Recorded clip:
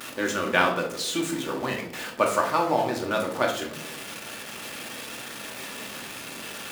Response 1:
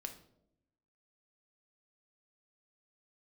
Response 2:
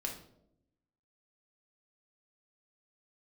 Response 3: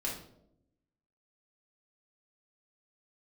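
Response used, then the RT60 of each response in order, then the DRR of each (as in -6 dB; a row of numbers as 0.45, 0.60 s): 2; 0.80, 0.80, 0.80 s; 5.0, 0.0, -5.0 dB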